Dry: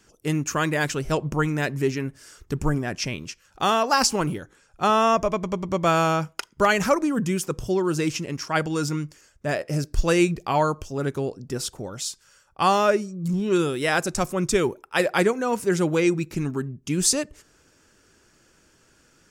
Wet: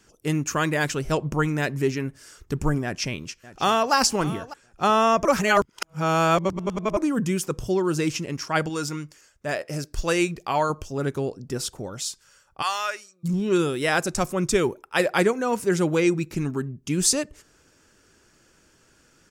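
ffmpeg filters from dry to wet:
-filter_complex "[0:a]asplit=2[s0][s1];[s1]afade=t=in:st=2.83:d=0.01,afade=t=out:st=3.93:d=0.01,aecho=0:1:600|1200|1800:0.149624|0.0523682|0.0183289[s2];[s0][s2]amix=inputs=2:normalize=0,asettb=1/sr,asplit=3[s3][s4][s5];[s3]atrim=end=8.694[s6];[s4]atrim=start=8.69:end=10.7,asetpts=PTS-STARTPTS,afade=t=in:d=0.004:c=qsin,afade=t=out:st=2.006:d=0.004:c=qsin,lowshelf=f=370:g=-7[s7];[s5]atrim=start=10.696[s8];[s6][s7]acrossfade=d=0.004:c1=hsin:c2=qsin[s9];[s9][s8]acrossfade=d=0.004:c1=qsin:c2=hsin,asplit=3[s10][s11][s12];[s10]afade=t=out:st=12.61:d=0.02[s13];[s11]highpass=1400,afade=t=in:st=12.61:d=0.02,afade=t=out:st=13.23:d=0.02[s14];[s12]afade=t=in:st=13.23:d=0.02[s15];[s13][s14][s15]amix=inputs=3:normalize=0,asplit=3[s16][s17][s18];[s16]atrim=end=5.252[s19];[s17]atrim=start=5.248:end=6.972,asetpts=PTS-STARTPTS,areverse[s20];[s18]atrim=start=6.968[s21];[s19][s20]acrossfade=d=0.004:c1=hsin:c2=hsin[s22];[s22][s21]acrossfade=d=0.004:c1=hsin:c2=hsin"

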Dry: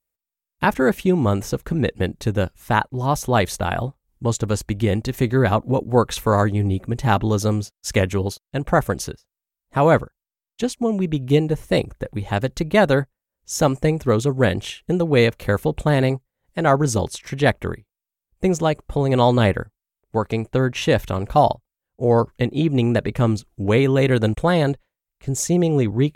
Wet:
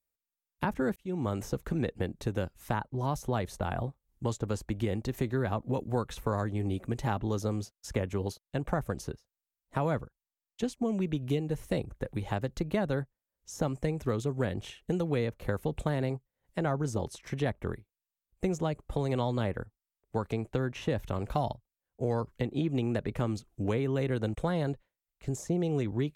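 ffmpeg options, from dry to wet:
-filter_complex "[0:a]asplit=2[s0][s1];[s0]atrim=end=0.96,asetpts=PTS-STARTPTS,afade=t=out:st=0.956:d=0.004:c=hsin[s2];[s1]atrim=start=0.96,asetpts=PTS-STARTPTS,afade=t=in:d=0.53[s3];[s2][s3]concat=n=2:v=0:a=1,acrossover=split=240|1400[s4][s5][s6];[s4]acompressor=threshold=0.0447:ratio=4[s7];[s5]acompressor=threshold=0.0501:ratio=4[s8];[s6]acompressor=threshold=0.01:ratio=4[s9];[s7][s8][s9]amix=inputs=3:normalize=0,volume=0.531"

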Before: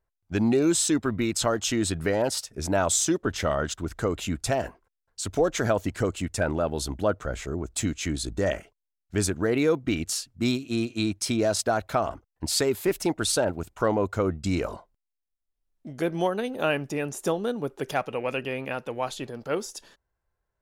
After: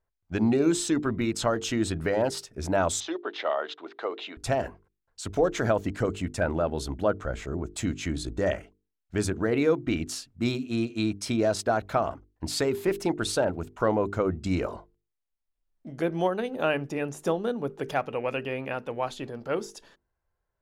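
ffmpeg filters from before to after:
-filter_complex "[0:a]asettb=1/sr,asplit=3[s0][s1][s2];[s0]atrim=end=3.004[s3];[s1]atrim=start=3:end=4.37,asetpts=PTS-STARTPTS,afade=t=in:d=0.004:c=qsin,afade=t=out:st=1.366:d=0.004:c=qsin,highpass=f=400:w=0.5412,highpass=f=400:w=1.3066,equalizer=f=500:t=q:w=4:g=-4,equalizer=f=780:t=q:w=4:g=3,equalizer=f=1500:t=q:w=4:g=-4,equalizer=f=3800:t=q:w=4:g=6,lowpass=f=4100:w=0.5412,lowpass=f=4100:w=1.3066[s4];[s2]atrim=start=4.366[s5];[s3][s4]acrossfade=d=0.004:c1=hsin:c2=qsin[s6];[s6][s5]acrossfade=d=0.004:c1=qsin:c2=hsin,highshelf=f=4500:g=-9.5,bandreject=f=50:t=h:w=6,bandreject=f=100:t=h:w=6,bandreject=f=150:t=h:w=6,bandreject=f=200:t=h:w=6,bandreject=f=250:t=h:w=6,bandreject=f=300:t=h:w=6,bandreject=f=350:t=h:w=6,bandreject=f=400:t=h:w=6,bandreject=f=450:t=h:w=6"

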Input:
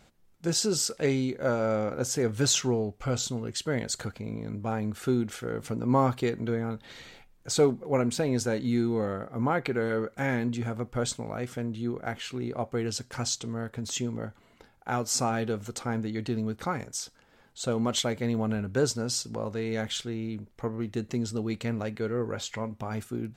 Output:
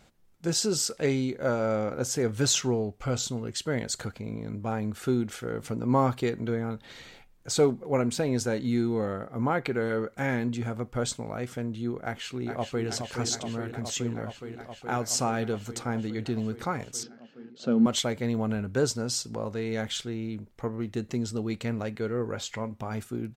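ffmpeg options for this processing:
-filter_complex "[0:a]asplit=2[s0][s1];[s1]afade=t=in:st=12.04:d=0.01,afade=t=out:st=12.87:d=0.01,aecho=0:1:420|840|1260|1680|2100|2520|2940|3360|3780|4200|4620|5040:0.473151|0.402179|0.341852|0.290574|0.246988|0.20994|0.178449|0.151681|0.128929|0.10959|0.0931514|0.0791787[s2];[s0][s2]amix=inputs=2:normalize=0,asettb=1/sr,asplit=3[s3][s4][s5];[s3]atrim=end=17.034[s6];[s4]atrim=start=17.03:end=17.86,asetpts=PTS-STARTPTS,afade=t=in:d=0.004:c=qsin,afade=t=out:st=0.826:d=0.004:c=qsin,highpass=f=150:w=0.5412,highpass=f=150:w=1.3066,equalizer=f=230:t=q:w=4:g=10,equalizer=f=700:t=q:w=4:g=-4,equalizer=f=1000:t=q:w=4:g=-9,equalizer=f=2100:t=q:w=4:g=-6,equalizer=f=3700:t=q:w=4:g=-9,lowpass=f=4700:w=0.5412,lowpass=f=4700:w=1.3066[s7];[s5]atrim=start=17.856[s8];[s6][s7]acrossfade=d=0.004:c1=hsin:c2=qsin[s9];[s9][s8]acrossfade=d=0.004:c1=qsin:c2=hsin"

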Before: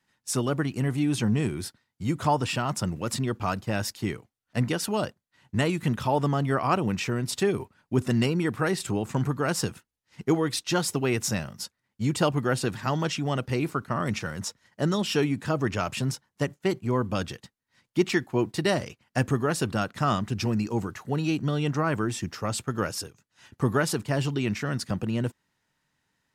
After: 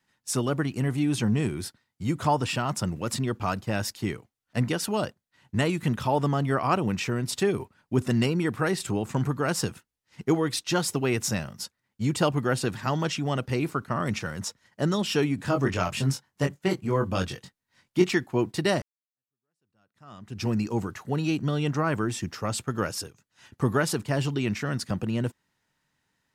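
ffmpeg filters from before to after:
-filter_complex "[0:a]asettb=1/sr,asplit=3[s0][s1][s2];[s0]atrim=end=15.364[s3];[s1]atrim=start=15.36:end=18.09,asetpts=PTS-STARTPTS,afade=t=in:d=0.004:c=qsin,afade=t=out:st=2.726:d=0.004:c=qsin,asplit=2[s4][s5];[s5]adelay=22,volume=0.631[s6];[s4][s6]amix=inputs=2:normalize=0,atrim=end_sample=120393[s7];[s2]atrim=start=18.086[s8];[s3][s7]acrossfade=d=0.004:c1=hsin:c2=qsin[s9];[s9][s8]acrossfade=d=0.004:c1=qsin:c2=hsin,asplit=2[s10][s11];[s10]atrim=end=18.82,asetpts=PTS-STARTPTS,afade=t=out:st=18.816:d=0.004:c=hsin[s12];[s11]atrim=start=18.82,asetpts=PTS-STARTPTS,afade=t=in:d=1.65:c=exp[s13];[s12][s13]concat=n=2:v=0:a=1"

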